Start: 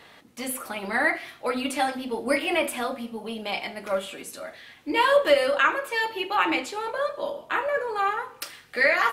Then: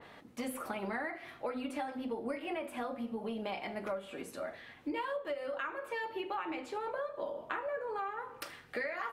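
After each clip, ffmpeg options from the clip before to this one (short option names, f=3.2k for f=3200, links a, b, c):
-af "highshelf=f=2.1k:g=-9.5,acompressor=threshold=-34dB:ratio=16,adynamicequalizer=threshold=0.00158:dfrequency=2800:dqfactor=0.7:tfrequency=2800:tqfactor=0.7:attack=5:release=100:ratio=0.375:range=2:mode=cutabove:tftype=highshelf"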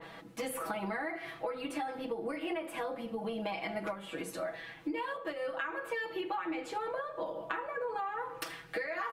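-af "aecho=1:1:6.1:0.94,acompressor=threshold=-35dB:ratio=6,volume=2.5dB"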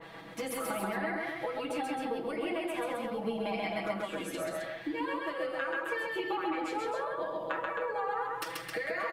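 -af "aecho=1:1:134.1|265.3:0.794|0.562"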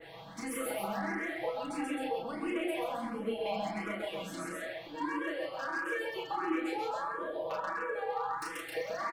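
-filter_complex "[0:a]asplit=2[a][b];[b]adelay=34,volume=-3dB[c];[a][c]amix=inputs=2:normalize=0,acrossover=split=1300[d][e];[e]asoftclip=type=hard:threshold=-36dB[f];[d][f]amix=inputs=2:normalize=0,asplit=2[g][h];[h]afreqshift=1.5[i];[g][i]amix=inputs=2:normalize=1"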